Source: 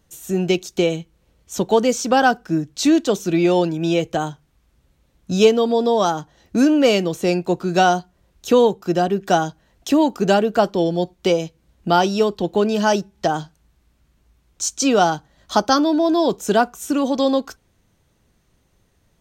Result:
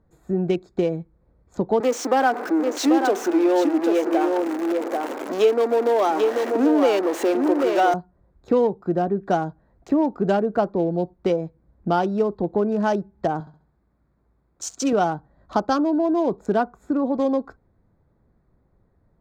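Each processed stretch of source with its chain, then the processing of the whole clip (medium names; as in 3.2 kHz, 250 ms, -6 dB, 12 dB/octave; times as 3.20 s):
1.80–7.94 s: jump at every zero crossing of -17 dBFS + steep high-pass 270 Hz 48 dB/octave + delay 788 ms -5 dB
13.40–14.93 s: high-pass 160 Hz 6 dB/octave + treble shelf 7.7 kHz +6.5 dB + flutter echo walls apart 11.6 m, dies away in 0.44 s
whole clip: local Wiener filter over 15 samples; treble shelf 3 kHz -12 dB; compression 1.5:1, threshold -22 dBFS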